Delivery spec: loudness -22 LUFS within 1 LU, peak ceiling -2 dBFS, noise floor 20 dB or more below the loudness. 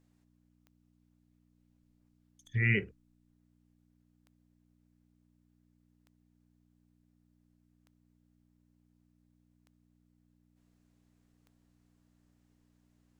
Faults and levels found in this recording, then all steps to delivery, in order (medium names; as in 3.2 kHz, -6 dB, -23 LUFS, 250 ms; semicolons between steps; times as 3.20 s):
clicks found 7; hum 60 Hz; highest harmonic 300 Hz; hum level -69 dBFS; loudness -30.5 LUFS; peak level -16.0 dBFS; loudness target -22.0 LUFS
-> de-click; de-hum 60 Hz, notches 5; trim +8.5 dB